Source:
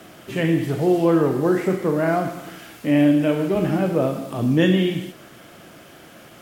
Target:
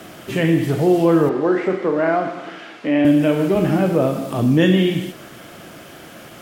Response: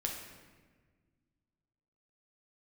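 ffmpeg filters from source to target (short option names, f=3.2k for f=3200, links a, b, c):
-filter_complex "[0:a]asplit=2[a][b];[b]alimiter=limit=-16.5dB:level=0:latency=1:release=267,volume=-1dB[c];[a][c]amix=inputs=2:normalize=0,asettb=1/sr,asplit=3[d][e][f];[d]atrim=end=1.294[g];[e]atrim=start=1.29:end=3.05,asetpts=PTS-STARTPTS,afade=t=in:d=0.004:c=qsin,afade=t=out:st=1.756:d=0.004:c=qsin,highpass=280,lowpass=3.6k[h];[f]atrim=start=3.046[i];[g][h]acrossfade=d=0.004:c1=hsin:c2=qsin[j];[j][i]acrossfade=d=0.004:c1=qsin:c2=hsin"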